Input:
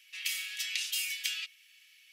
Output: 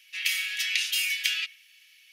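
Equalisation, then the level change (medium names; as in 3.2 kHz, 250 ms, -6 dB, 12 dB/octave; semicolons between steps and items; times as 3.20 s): band-stop 1.2 kHz, Q 10; band-stop 7.7 kHz, Q 11; dynamic bell 1.8 kHz, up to +7 dB, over -50 dBFS, Q 0.77; +3.5 dB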